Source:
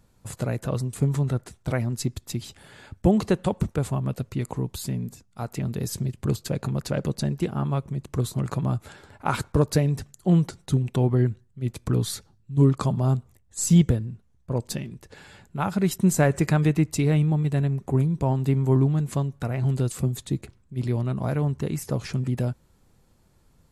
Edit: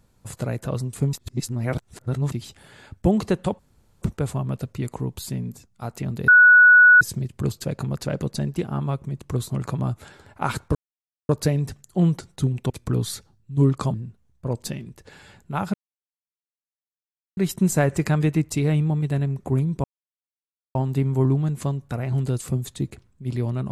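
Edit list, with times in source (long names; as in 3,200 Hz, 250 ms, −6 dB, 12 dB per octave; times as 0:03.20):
0:01.13–0:02.32: reverse
0:03.59: splice in room tone 0.43 s
0:05.85: insert tone 1,470 Hz −8 dBFS 0.73 s
0:09.59: splice in silence 0.54 s
0:11.00–0:11.70: remove
0:12.94–0:13.99: remove
0:15.79: splice in silence 1.63 s
0:18.26: splice in silence 0.91 s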